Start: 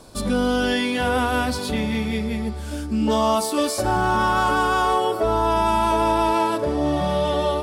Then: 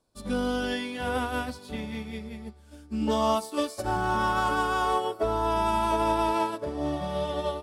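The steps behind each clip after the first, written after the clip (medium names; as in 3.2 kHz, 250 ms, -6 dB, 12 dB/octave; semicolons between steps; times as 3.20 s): upward expansion 2.5:1, over -34 dBFS; trim -4 dB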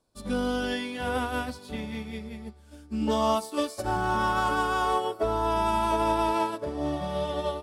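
no audible change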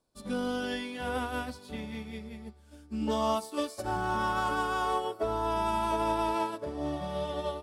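hum notches 50/100 Hz; trim -4 dB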